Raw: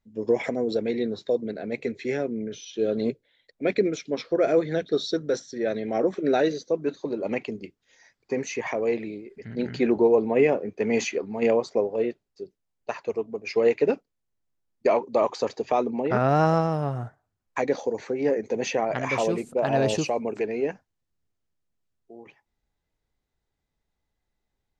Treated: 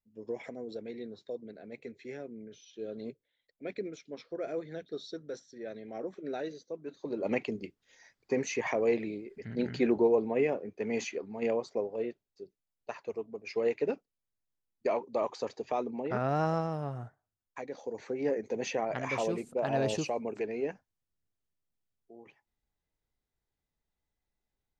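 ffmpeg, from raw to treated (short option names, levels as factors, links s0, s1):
-af "volume=2.37,afade=t=in:st=6.9:d=0.42:silence=0.237137,afade=t=out:st=9.4:d=1.08:silence=0.473151,afade=t=out:st=17.03:d=0.68:silence=0.398107,afade=t=in:st=17.71:d=0.41:silence=0.316228"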